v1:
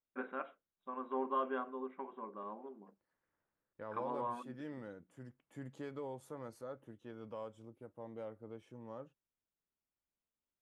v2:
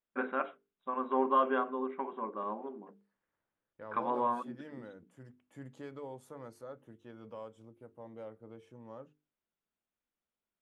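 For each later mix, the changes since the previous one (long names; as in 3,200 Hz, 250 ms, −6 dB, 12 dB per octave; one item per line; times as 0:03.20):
first voice +8.5 dB
master: add mains-hum notches 50/100/150/200/250/300/350/400/450 Hz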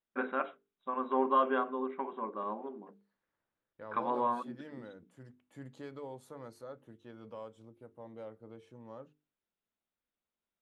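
master: add parametric band 4,100 Hz +8 dB 0.28 octaves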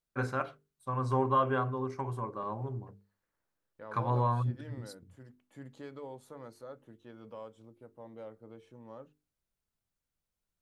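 first voice: remove linear-phase brick-wall band-pass 180–3,900 Hz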